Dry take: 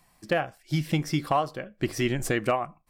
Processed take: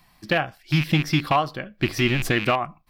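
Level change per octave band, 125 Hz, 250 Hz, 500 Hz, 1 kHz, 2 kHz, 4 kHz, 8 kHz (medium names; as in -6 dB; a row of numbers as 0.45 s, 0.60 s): +6.0 dB, +4.5 dB, +1.5 dB, +4.0 dB, +8.0 dB, +9.0 dB, +0.5 dB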